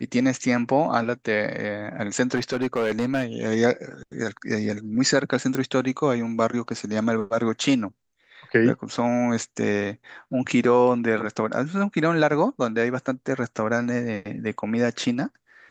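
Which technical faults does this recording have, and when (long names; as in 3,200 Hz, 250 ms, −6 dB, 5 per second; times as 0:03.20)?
0:02.35–0:03.24: clipping −19 dBFS
0:05.55: click −13 dBFS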